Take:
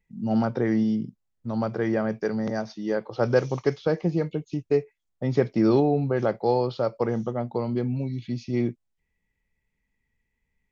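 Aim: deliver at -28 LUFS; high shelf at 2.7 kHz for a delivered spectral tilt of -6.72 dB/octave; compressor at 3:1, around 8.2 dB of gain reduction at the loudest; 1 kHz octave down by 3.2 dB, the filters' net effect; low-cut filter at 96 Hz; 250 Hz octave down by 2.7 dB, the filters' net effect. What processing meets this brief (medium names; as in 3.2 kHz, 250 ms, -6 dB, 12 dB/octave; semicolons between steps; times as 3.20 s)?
high-pass 96 Hz; peaking EQ 250 Hz -3 dB; peaking EQ 1 kHz -3.5 dB; treble shelf 2.7 kHz -6 dB; compression 3:1, threshold -29 dBFS; trim +5.5 dB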